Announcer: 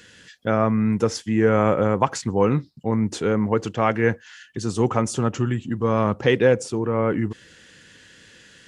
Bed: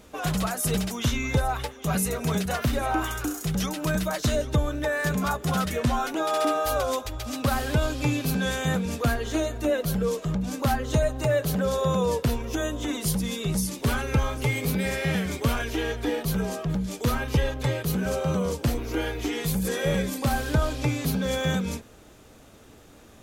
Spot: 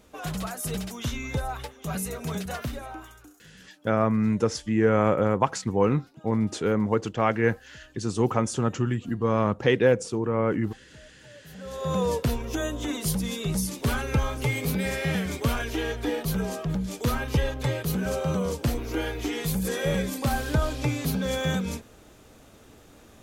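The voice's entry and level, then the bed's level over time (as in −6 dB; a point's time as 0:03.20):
3.40 s, −3.0 dB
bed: 0:02.59 −5.5 dB
0:03.54 −28.5 dB
0:11.32 −28.5 dB
0:11.96 −1 dB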